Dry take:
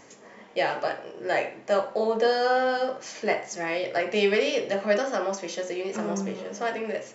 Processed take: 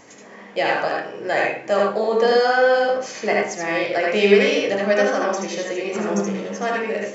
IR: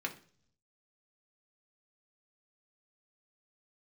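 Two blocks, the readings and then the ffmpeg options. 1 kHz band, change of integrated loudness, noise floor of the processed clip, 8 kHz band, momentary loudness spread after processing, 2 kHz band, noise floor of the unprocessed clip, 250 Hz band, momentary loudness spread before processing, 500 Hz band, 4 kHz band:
+6.0 dB, +7.0 dB, -42 dBFS, no reading, 10 LU, +8.0 dB, -50 dBFS, +7.5 dB, 9 LU, +7.0 dB, +5.5 dB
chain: -filter_complex "[0:a]asplit=2[s0][s1];[1:a]atrim=start_sample=2205,adelay=76[s2];[s1][s2]afir=irnorm=-1:irlink=0,volume=0.841[s3];[s0][s3]amix=inputs=2:normalize=0,volume=1.5"

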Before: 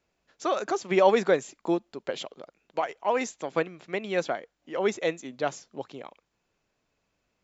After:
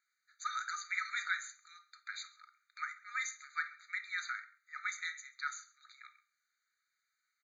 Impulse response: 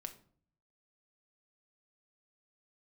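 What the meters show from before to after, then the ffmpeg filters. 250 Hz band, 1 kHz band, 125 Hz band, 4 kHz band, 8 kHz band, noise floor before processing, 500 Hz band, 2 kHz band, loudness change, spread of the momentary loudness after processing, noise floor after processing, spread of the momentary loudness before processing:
under -40 dB, -12.5 dB, under -40 dB, -7.0 dB, no reading, -78 dBFS, under -40 dB, -2.0 dB, -11.5 dB, 20 LU, under -85 dBFS, 18 LU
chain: -filter_complex "[0:a]aecho=1:1:135:0.0668[s0];[1:a]atrim=start_sample=2205[s1];[s0][s1]afir=irnorm=-1:irlink=0,afftfilt=real='re*eq(mod(floor(b*sr/1024/1200),2),1)':imag='im*eq(mod(floor(b*sr/1024/1200),2),1)':win_size=1024:overlap=0.75,volume=1.33"

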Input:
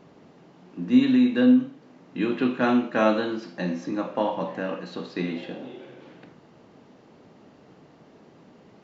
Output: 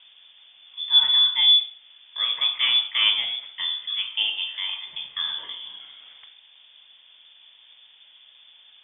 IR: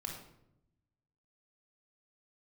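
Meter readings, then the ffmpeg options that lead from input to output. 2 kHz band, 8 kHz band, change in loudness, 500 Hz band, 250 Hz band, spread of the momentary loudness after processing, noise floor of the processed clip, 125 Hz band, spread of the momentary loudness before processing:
+2.0 dB, no reading, +4.0 dB, under -25 dB, under -40 dB, 18 LU, -54 dBFS, under -25 dB, 18 LU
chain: -af "lowpass=f=3100:t=q:w=0.5098,lowpass=f=3100:t=q:w=0.6013,lowpass=f=3100:t=q:w=0.9,lowpass=f=3100:t=q:w=2.563,afreqshift=-3700"

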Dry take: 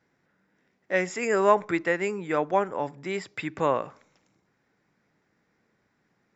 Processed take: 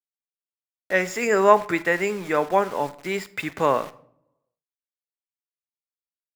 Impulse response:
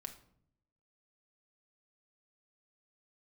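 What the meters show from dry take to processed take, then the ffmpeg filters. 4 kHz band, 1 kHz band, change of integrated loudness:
+5.5 dB, +4.5 dB, +4.0 dB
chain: -filter_complex "[0:a]aeval=exprs='val(0)*gte(abs(val(0)),0.00944)':c=same,asplit=2[s0][s1];[1:a]atrim=start_sample=2205,lowshelf=f=360:g=-9[s2];[s1][s2]afir=irnorm=-1:irlink=0,volume=1.33[s3];[s0][s3]amix=inputs=2:normalize=0"

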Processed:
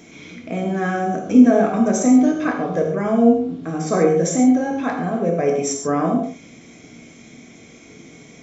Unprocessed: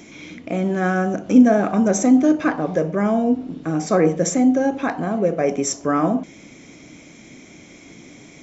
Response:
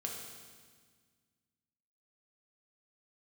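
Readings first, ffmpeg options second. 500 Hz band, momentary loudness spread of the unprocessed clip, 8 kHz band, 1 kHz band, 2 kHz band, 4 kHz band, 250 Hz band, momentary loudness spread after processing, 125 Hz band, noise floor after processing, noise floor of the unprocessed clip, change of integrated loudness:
+1.0 dB, 10 LU, no reading, +1.0 dB, -1.0 dB, -0.5 dB, +1.0 dB, 11 LU, 0.0 dB, -45 dBFS, -45 dBFS, +1.0 dB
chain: -filter_complex "[1:a]atrim=start_sample=2205,atrim=end_sample=6615[s0];[0:a][s0]afir=irnorm=-1:irlink=0"

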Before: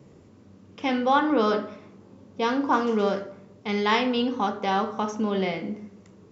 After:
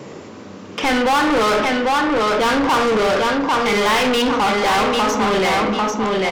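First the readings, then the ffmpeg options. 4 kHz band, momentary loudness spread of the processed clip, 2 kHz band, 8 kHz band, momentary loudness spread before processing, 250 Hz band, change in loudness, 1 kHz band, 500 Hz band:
+12.0 dB, 4 LU, +12.5 dB, no reading, 14 LU, +6.5 dB, +8.5 dB, +9.5 dB, +9.0 dB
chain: -filter_complex "[0:a]aecho=1:1:796|1592|2388:0.473|0.123|0.032,asplit=2[s0][s1];[s1]highpass=f=720:p=1,volume=39.8,asoftclip=type=tanh:threshold=0.355[s2];[s0][s2]amix=inputs=2:normalize=0,lowpass=f=5100:p=1,volume=0.501,volume=0.891"

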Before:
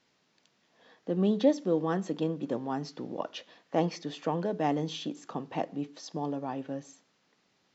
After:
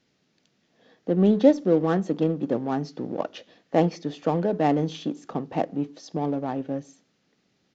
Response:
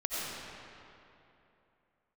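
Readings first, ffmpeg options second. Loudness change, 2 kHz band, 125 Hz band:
+7.0 dB, +5.0 dB, +7.5 dB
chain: -filter_complex "[0:a]equalizer=f=1000:t=o:w=0.31:g=-6,asplit=2[s0][s1];[s1]adynamicsmooth=sensitivity=7.5:basefreq=520,volume=1.33[s2];[s0][s2]amix=inputs=2:normalize=0,aresample=16000,aresample=44100"

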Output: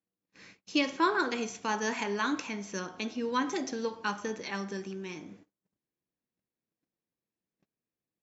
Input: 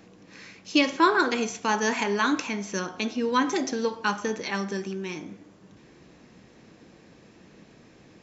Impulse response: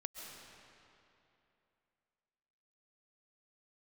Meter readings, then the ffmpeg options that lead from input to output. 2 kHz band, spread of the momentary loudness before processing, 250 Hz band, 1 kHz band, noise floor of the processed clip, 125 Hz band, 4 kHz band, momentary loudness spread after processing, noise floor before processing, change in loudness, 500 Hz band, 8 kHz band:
-6.5 dB, 12 LU, -6.5 dB, -6.5 dB, under -85 dBFS, -6.5 dB, -6.5 dB, 11 LU, -54 dBFS, -6.5 dB, -6.5 dB, no reading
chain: -af "agate=range=0.0178:threshold=0.00501:ratio=16:detection=peak,volume=0.473"

